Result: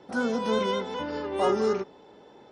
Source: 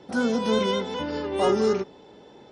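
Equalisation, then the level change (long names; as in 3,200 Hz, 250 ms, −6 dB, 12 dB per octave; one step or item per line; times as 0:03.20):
drawn EQ curve 130 Hz 0 dB, 1,200 Hz +6 dB, 3,300 Hz +1 dB
−6.0 dB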